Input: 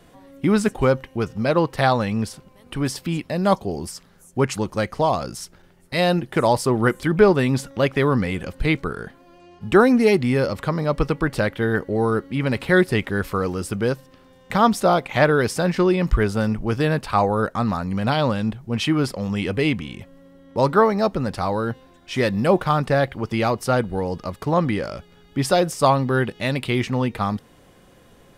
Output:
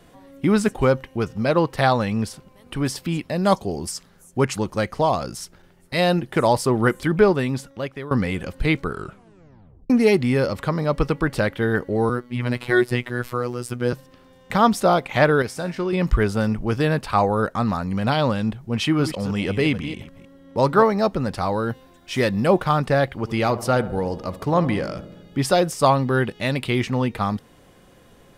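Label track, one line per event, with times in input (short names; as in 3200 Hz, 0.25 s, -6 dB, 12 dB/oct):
3.390000	4.450000	dynamic EQ 7100 Hz, up to +6 dB, over -44 dBFS, Q 0.74
7.040000	8.110000	fade out, to -17.5 dB
8.910000	8.910000	tape stop 0.99 s
12.090000	13.930000	robotiser 122 Hz
15.420000	15.930000	resonator 130 Hz, decay 0.45 s
18.840000	20.830000	reverse delay 0.157 s, level -11 dB
21.690000	22.250000	high shelf 9800 Hz +9 dB
23.170000	25.390000	darkening echo 69 ms, feedback 73%, low-pass 1200 Hz, level -13.5 dB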